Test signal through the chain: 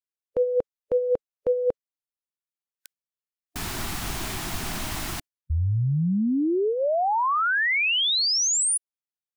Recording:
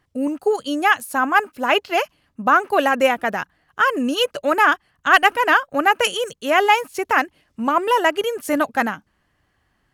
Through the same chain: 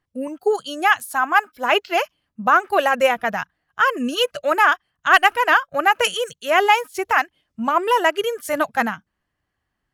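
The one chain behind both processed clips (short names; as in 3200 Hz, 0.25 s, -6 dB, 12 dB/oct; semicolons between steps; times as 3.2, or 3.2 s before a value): spectral noise reduction 11 dB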